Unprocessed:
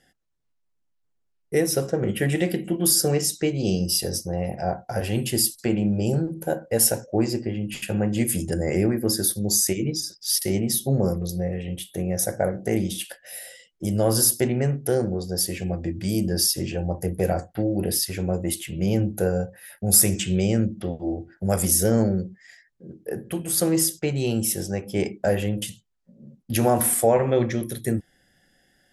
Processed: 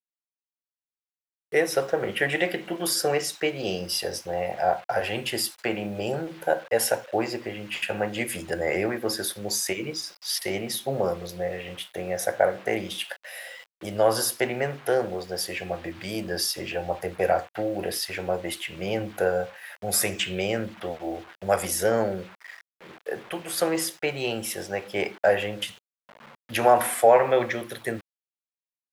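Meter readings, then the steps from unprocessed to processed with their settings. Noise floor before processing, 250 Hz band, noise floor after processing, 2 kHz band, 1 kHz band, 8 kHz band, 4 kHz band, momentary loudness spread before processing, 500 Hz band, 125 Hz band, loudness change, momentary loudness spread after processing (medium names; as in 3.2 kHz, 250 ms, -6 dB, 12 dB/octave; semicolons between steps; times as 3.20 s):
-71 dBFS, -8.5 dB, under -85 dBFS, +6.0 dB, +5.5 dB, -8.0 dB, -1.5 dB, 10 LU, +0.5 dB, -12.5 dB, -3.5 dB, 11 LU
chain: word length cut 8-bit, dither none; three-band isolator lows -20 dB, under 530 Hz, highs -16 dB, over 3.5 kHz; trim +7 dB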